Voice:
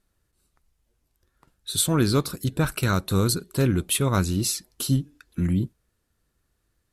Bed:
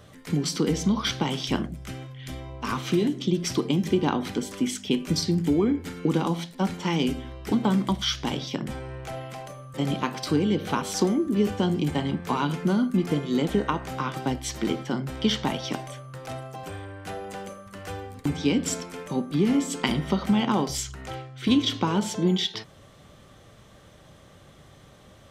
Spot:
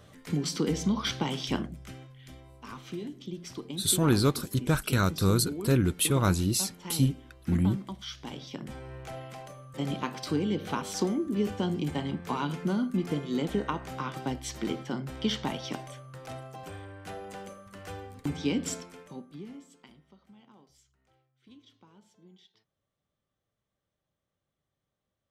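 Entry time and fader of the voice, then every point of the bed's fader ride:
2.10 s, -2.5 dB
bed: 1.56 s -4 dB
2.55 s -14.5 dB
8.03 s -14.5 dB
8.96 s -5.5 dB
18.69 s -5.5 dB
20.06 s -34 dB

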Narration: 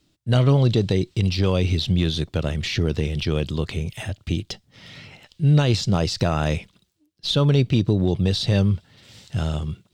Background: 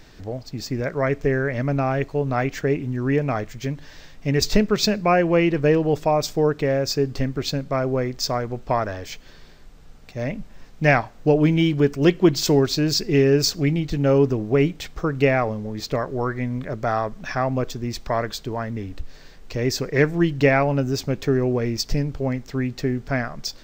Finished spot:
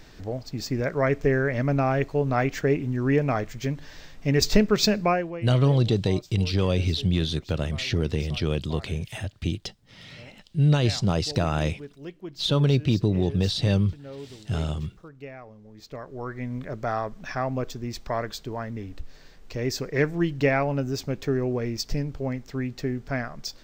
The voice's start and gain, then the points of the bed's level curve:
5.15 s, -3.0 dB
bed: 5.04 s -1 dB
5.47 s -22.5 dB
15.43 s -22.5 dB
16.54 s -5 dB

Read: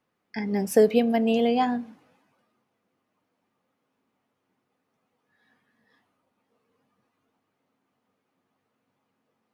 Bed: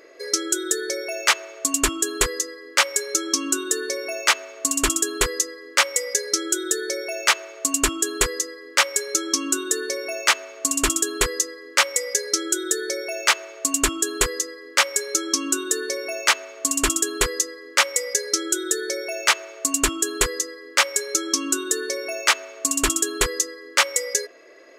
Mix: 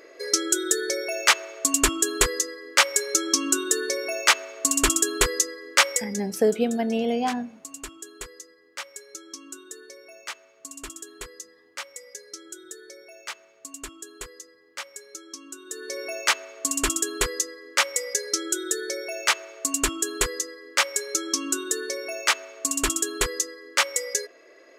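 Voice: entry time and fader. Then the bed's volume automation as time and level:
5.65 s, -2.5 dB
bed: 5.92 s 0 dB
6.25 s -18 dB
15.58 s -18 dB
16 s -3.5 dB

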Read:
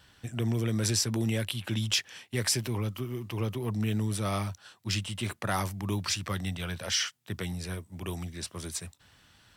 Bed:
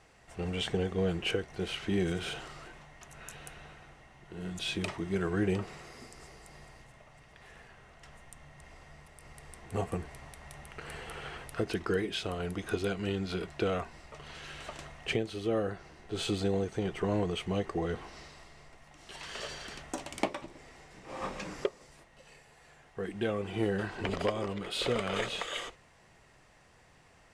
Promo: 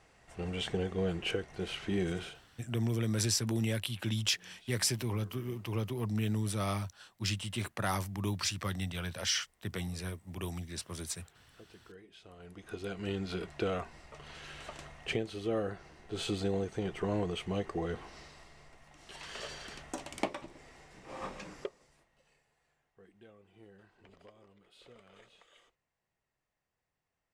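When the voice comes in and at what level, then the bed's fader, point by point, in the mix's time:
2.35 s, -3.0 dB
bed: 2.2 s -2.5 dB
2.48 s -23.5 dB
12.06 s -23.5 dB
13.11 s -2.5 dB
21.12 s -2.5 dB
23.38 s -26.5 dB

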